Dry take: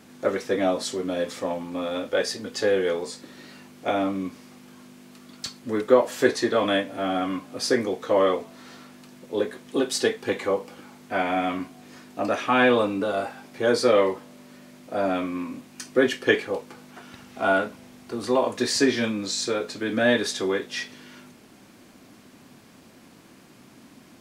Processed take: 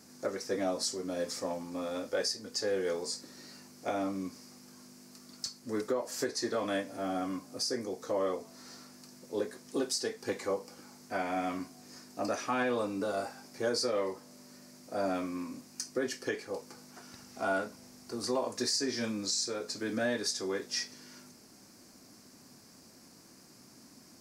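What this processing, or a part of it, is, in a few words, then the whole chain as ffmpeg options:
over-bright horn tweeter: -filter_complex "[0:a]highshelf=f=4.1k:t=q:w=3:g=6.5,alimiter=limit=-14dB:level=0:latency=1:release=358,asettb=1/sr,asplit=3[a][b][c];[a]atrim=end=6.974[d];[b]atrim=start=6.97:end=8.45,asetpts=PTS-STARTPTS,afade=t=in:d=0.004:c=qsin,afade=t=out:st=1.476:d=0.004:c=qsin,equalizer=f=2.2k:t=o:w=2.4:g=-3[e];[c]atrim=start=8.446[f];[d][e]acrossfade=d=0.004:c1=hsin:c2=qsin[g];[g][f]acrossfade=d=0.004:c1=qsin:c2=hsin,volume=-7.5dB"

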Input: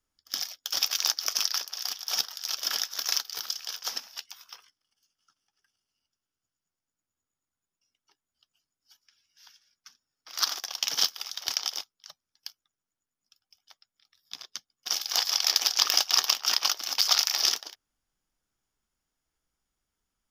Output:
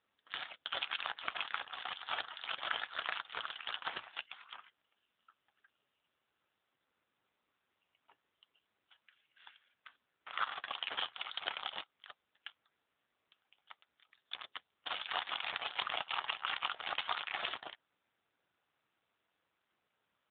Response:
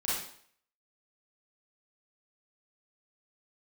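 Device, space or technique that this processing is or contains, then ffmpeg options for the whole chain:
voicemail: -af "highpass=360,lowpass=2.7k,acompressor=threshold=-36dB:ratio=8,volume=8dB" -ar 8000 -c:a libopencore_amrnb -b:a 7400

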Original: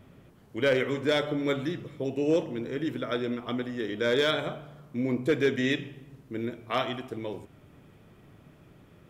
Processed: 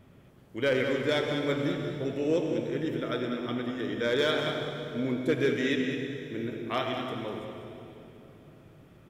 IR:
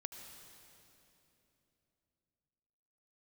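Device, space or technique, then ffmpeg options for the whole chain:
cave: -filter_complex "[0:a]aecho=1:1:197:0.355[a];[1:a]atrim=start_sample=2205[b];[a][b]afir=irnorm=-1:irlink=0,volume=2dB"

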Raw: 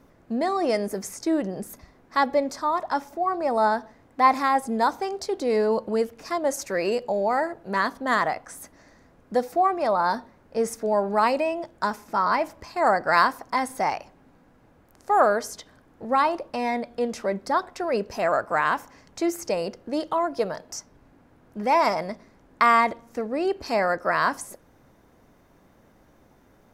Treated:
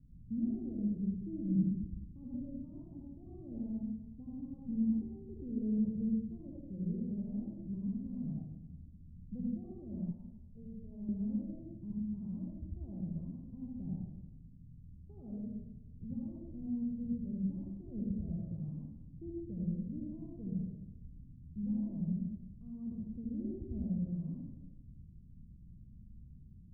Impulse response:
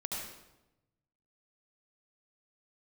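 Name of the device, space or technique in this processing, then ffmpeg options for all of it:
club heard from the street: -filter_complex "[0:a]alimiter=limit=-15dB:level=0:latency=1:release=27,lowpass=f=160:w=0.5412,lowpass=f=160:w=1.3066[a];[1:a]atrim=start_sample=2205[b];[a][b]afir=irnorm=-1:irlink=0,asettb=1/sr,asplit=3[c][d][e];[c]atrim=end=10.114[f];[d]atrim=start=10.11:end=11.09,asetpts=PTS-STARTPTS,afade=t=in:d=0.004:c=qsin,afade=t=out:st=0.976:d=0.004:c=qsin,equalizer=f=250:w=0.8:g=-12[g];[e]atrim=start=11.086[h];[f][g]acrossfade=d=0.004:c1=hsin:c2=qsin[i];[i][h]acrossfade=d=0.004:c1=qsin:c2=hsin,volume=5.5dB"

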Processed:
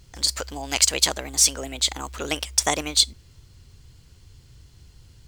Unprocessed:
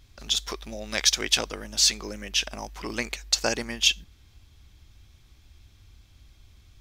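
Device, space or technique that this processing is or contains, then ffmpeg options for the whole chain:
nightcore: -af "asetrate=56889,aresample=44100,volume=3.5dB"

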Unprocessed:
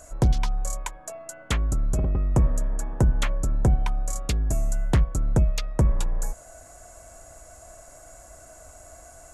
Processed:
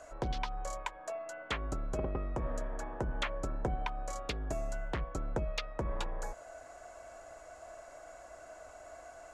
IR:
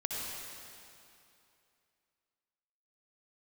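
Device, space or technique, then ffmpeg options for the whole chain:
DJ mixer with the lows and highs turned down: -filter_complex "[0:a]acrossover=split=310 4600:gain=0.2 1 0.1[a][b][c];[a][b][c]amix=inputs=3:normalize=0,alimiter=limit=-22.5dB:level=0:latency=1:release=149"

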